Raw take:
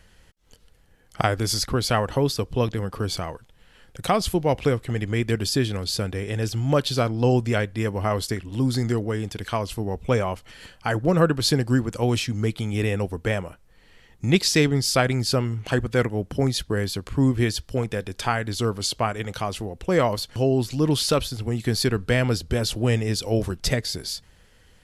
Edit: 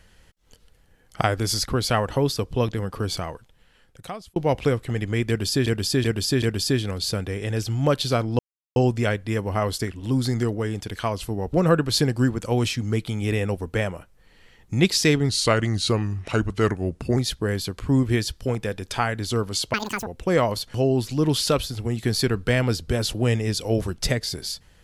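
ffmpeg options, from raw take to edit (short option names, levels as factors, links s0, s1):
-filter_complex "[0:a]asplit=11[s0][s1][s2][s3][s4][s5][s6][s7][s8][s9][s10];[s0]atrim=end=4.36,asetpts=PTS-STARTPTS,afade=t=out:st=3.27:d=1.09[s11];[s1]atrim=start=4.36:end=5.662,asetpts=PTS-STARTPTS,afade=t=in:d=0.004:c=hsin[s12];[s2]atrim=start=5.278:end=5.662[s13];[s3]atrim=start=5.278:end=5.662[s14];[s4]atrim=start=5.278:end=7.25,asetpts=PTS-STARTPTS,afade=t=out:st=1.968:d=0.004:c=hsin,apad=pad_dur=0.37[s15];[s5]atrim=start=7.25:end=10.022,asetpts=PTS-STARTPTS,afade=t=in:d=0.004:c=hsin[s16];[s6]atrim=start=11.038:end=14.804[s17];[s7]atrim=start=14.8:end=16.45,asetpts=PTS-STARTPTS,asetrate=38808,aresample=44100[s18];[s8]atrim=start=16.446:end=19.024[s19];[s9]atrim=start=19.02:end=19.68,asetpts=PTS-STARTPTS,asetrate=88200,aresample=44100[s20];[s10]atrim=start=19.676[s21];[s11][s12]concat=n=2:v=0:a=1[s22];[s22][s13]acrossfade=d=0.004:c1=hsin:c2=hsin[s23];[s23][s14]acrossfade=d=0.004:c1=hsin:c2=hsin[s24];[s15][s16]concat=n=2:v=0:a=1[s25];[s24][s25]acrossfade=d=0.004:c1=hsin:c2=hsin[s26];[s26][s17]acrossfade=d=0.004:c1=hsin:c2=hsin[s27];[s27][s18]acrossfade=d=0.004:c1=hsin:c2=hsin[s28];[s28][s19]acrossfade=d=0.004:c1=hsin:c2=hsin[s29];[s29][s20]acrossfade=d=0.004:c1=hsin:c2=hsin[s30];[s30][s21]acrossfade=d=0.004:c1=hsin:c2=hsin"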